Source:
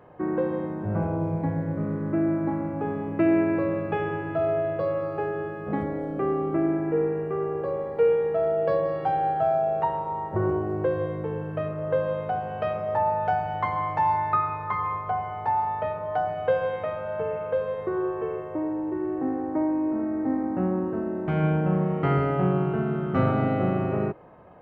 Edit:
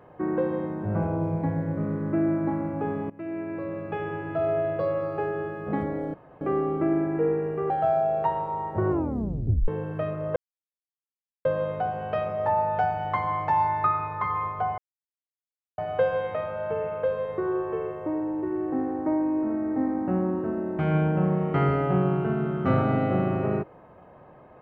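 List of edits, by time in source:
3.10–4.61 s: fade in, from -19.5 dB
6.14 s: insert room tone 0.27 s
7.43–9.28 s: delete
10.48 s: tape stop 0.78 s
11.94 s: insert silence 1.09 s
15.27–16.27 s: mute

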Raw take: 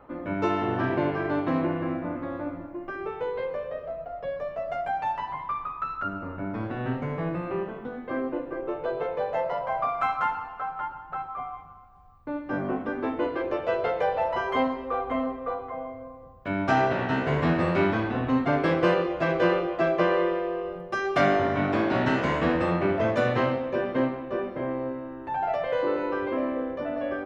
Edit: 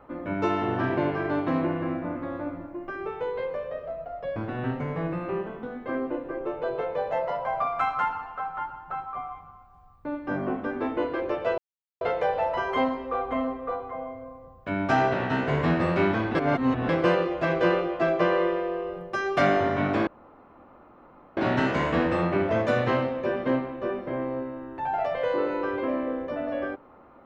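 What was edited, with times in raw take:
4.36–6.58 s: delete
13.80 s: insert silence 0.43 s
18.14–18.68 s: reverse
21.86 s: insert room tone 1.30 s

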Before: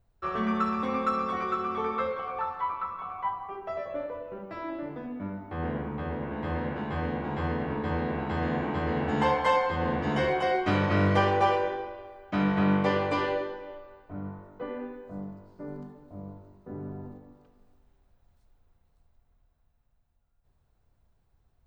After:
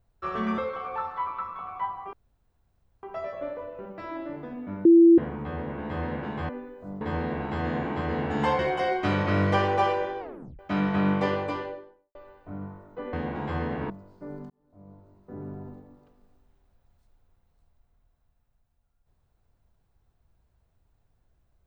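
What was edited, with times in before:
0.58–2.01 s: delete
3.56 s: insert room tone 0.90 s
5.38–5.71 s: bleep 336 Hz -11 dBFS
7.02–7.79 s: swap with 14.76–15.28 s
9.37–10.22 s: delete
11.83 s: tape stop 0.39 s
12.81–13.78 s: studio fade out
15.88–16.81 s: fade in

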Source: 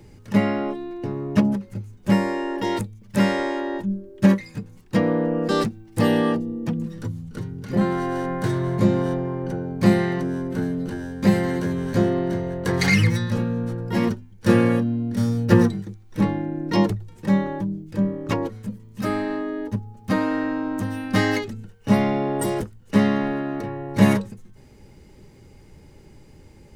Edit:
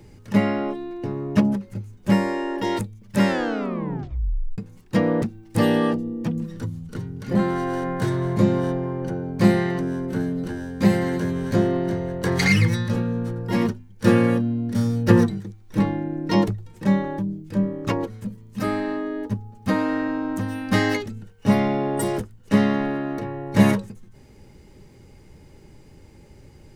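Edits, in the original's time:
3.26 s: tape stop 1.32 s
5.22–5.64 s: delete

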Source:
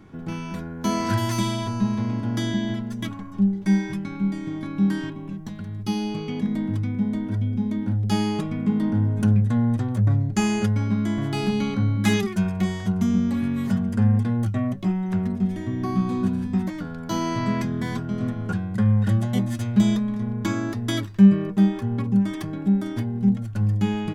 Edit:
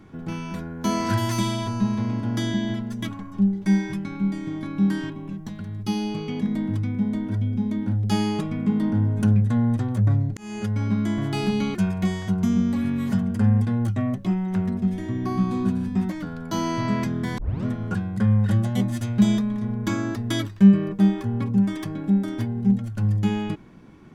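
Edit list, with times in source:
10.37–10.87 s: fade in
11.75–12.33 s: delete
17.96 s: tape start 0.27 s

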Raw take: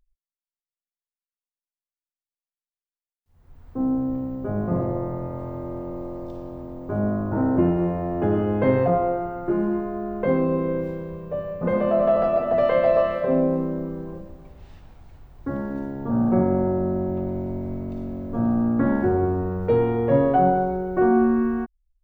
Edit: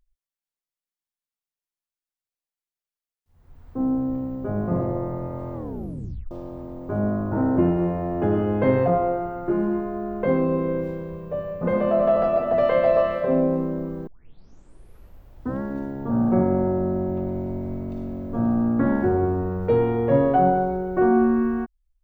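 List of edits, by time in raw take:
5.53 s: tape stop 0.78 s
14.07 s: tape start 1.54 s

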